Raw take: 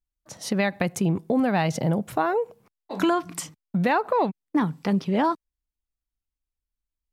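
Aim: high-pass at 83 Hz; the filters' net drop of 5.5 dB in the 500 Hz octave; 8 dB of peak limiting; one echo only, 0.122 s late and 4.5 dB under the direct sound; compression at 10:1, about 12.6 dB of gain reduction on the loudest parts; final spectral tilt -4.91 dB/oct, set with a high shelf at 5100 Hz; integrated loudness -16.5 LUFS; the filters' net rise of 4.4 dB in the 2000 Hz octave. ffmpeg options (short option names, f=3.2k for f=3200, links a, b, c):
-af "highpass=83,equalizer=f=500:t=o:g=-7.5,equalizer=f=2k:t=o:g=6.5,highshelf=f=5.1k:g=-5,acompressor=threshold=-32dB:ratio=10,alimiter=level_in=2.5dB:limit=-24dB:level=0:latency=1,volume=-2.5dB,aecho=1:1:122:0.596,volume=20.5dB"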